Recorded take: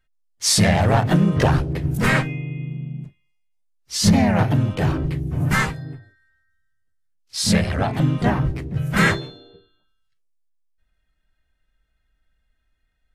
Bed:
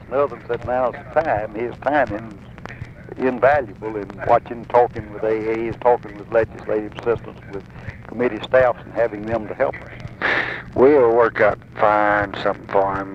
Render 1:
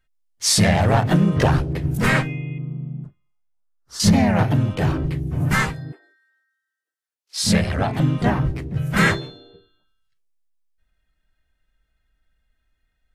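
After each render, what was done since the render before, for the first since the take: 2.58–4.00 s: resonant high shelf 1.8 kHz -8.5 dB, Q 3; 5.92–7.38 s: elliptic high-pass 330 Hz, stop band 70 dB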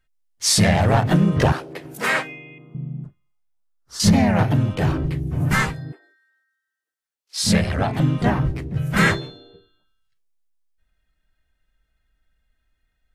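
1.52–2.75 s: high-pass 440 Hz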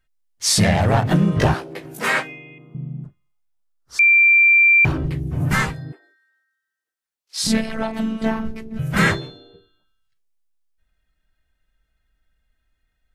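1.33–2.20 s: doubling 18 ms -6.5 dB; 3.99–4.85 s: bleep 2.36 kHz -9.5 dBFS; 7.47–8.79 s: robot voice 222 Hz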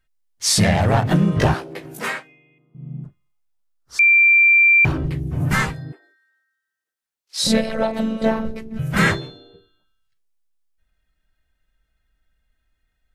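1.97–2.96 s: dip -15.5 dB, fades 0.23 s; 7.39–8.59 s: small resonant body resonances 540/3900 Hz, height 18 dB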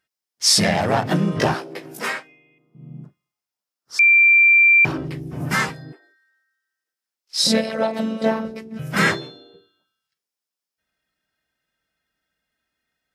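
high-pass 190 Hz 12 dB/octave; peaking EQ 5.2 kHz +7.5 dB 0.22 oct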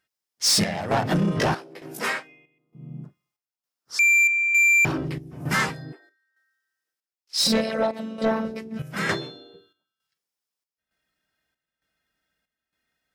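square tremolo 1.1 Hz, depth 65%, duty 70%; saturation -15 dBFS, distortion -12 dB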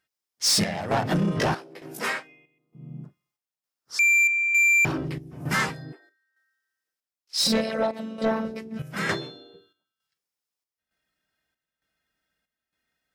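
trim -1.5 dB

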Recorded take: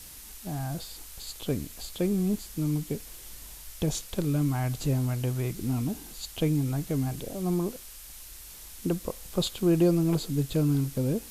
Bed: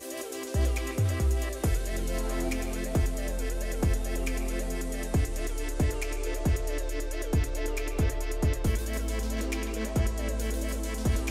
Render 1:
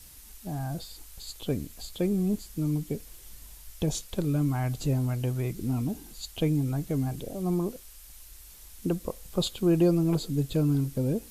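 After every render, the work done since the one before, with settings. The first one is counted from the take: noise reduction 6 dB, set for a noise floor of -46 dBFS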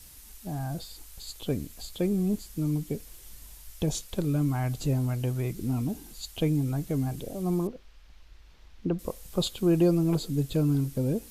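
7.67–8.99 s: distance through air 240 m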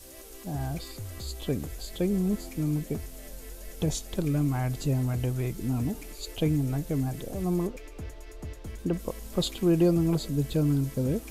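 add bed -13 dB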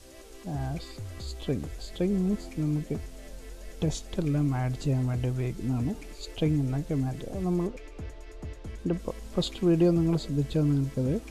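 distance through air 56 m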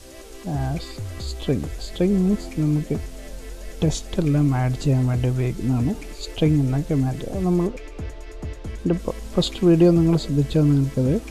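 trim +7.5 dB

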